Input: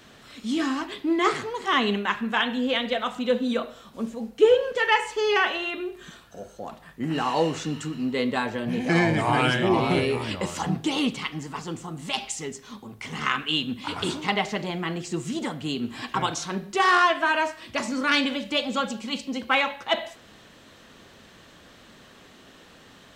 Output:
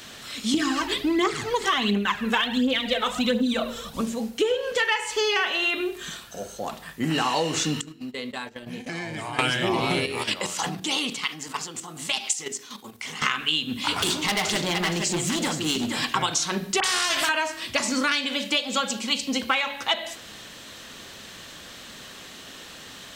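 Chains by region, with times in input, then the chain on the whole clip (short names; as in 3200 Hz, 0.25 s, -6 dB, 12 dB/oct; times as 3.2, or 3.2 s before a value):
0.54–4.01 low shelf 320 Hz +8 dB + phaser 1.4 Hz, delay 2.4 ms, feedback 55%
7.81–9.39 gate -28 dBFS, range -24 dB + compressor 4:1, threshold -38 dBFS
10.06–13.22 HPF 300 Hz 6 dB/oct + level quantiser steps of 11 dB
13.95–16.05 echo 0.468 s -8.5 dB + hard clip -26 dBFS
16.8–17.29 compressor, threshold -23 dBFS + dispersion highs, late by 41 ms, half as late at 2000 Hz + spectral compressor 2:1
18.12–19.21 HPF 180 Hz 6 dB/oct + mismatched tape noise reduction decoder only
whole clip: high shelf 2300 Hz +11 dB; de-hum 46.64 Hz, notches 10; compressor 10:1, threshold -24 dBFS; gain +4 dB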